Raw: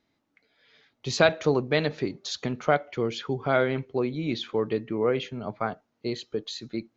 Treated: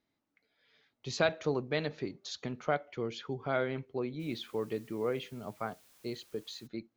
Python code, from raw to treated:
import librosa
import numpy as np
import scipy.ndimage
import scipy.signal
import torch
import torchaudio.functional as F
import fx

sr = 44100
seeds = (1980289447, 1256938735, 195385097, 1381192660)

y = fx.dmg_noise_colour(x, sr, seeds[0], colour='white', level_db=-55.0, at=(4.19, 6.66), fade=0.02)
y = y * librosa.db_to_amplitude(-8.5)